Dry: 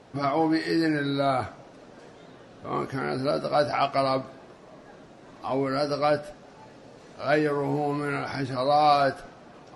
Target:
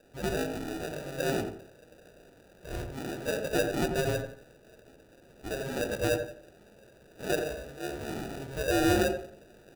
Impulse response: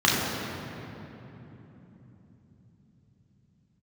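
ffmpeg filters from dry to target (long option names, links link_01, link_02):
-filter_complex "[0:a]lowshelf=frequency=370:gain=-8.5,aecho=1:1:1.6:0.66,acrusher=samples=41:mix=1:aa=0.000001,asettb=1/sr,asplit=3[link_01][link_02][link_03];[link_01]atrim=end=7.284[link_04];[link_02]atrim=start=7.28:end=7.84,asetpts=PTS-STARTPTS,afade=type=in:duration=0.004:curve=qsin,afade=type=out:start_time=0.556:duration=0.004:curve=qsin,agate=range=-33dB:threshold=-23dB:ratio=3:detection=peak[link_05];[link_03]atrim=start=7.836[link_06];[link_04][link_05]acrossfade=duration=0.004:curve1=hsin:curve2=qsin[link_07];[link_07][link_06]acrossfade=duration=0.004:curve1=qsin:curve2=hsin,asplit=2[link_08][link_09];[link_09]adelay=87,lowpass=frequency=1100:poles=1,volume=-4.5dB,asplit=2[link_10][link_11];[link_11]adelay=87,lowpass=frequency=1100:poles=1,volume=0.32,asplit=2[link_12][link_13];[link_13]adelay=87,lowpass=frequency=1100:poles=1,volume=0.32,asplit=2[link_14][link_15];[link_15]adelay=87,lowpass=frequency=1100:poles=1,volume=0.32[link_16];[link_08][link_10][link_12][link_14][link_16]amix=inputs=5:normalize=0,volume=-7dB"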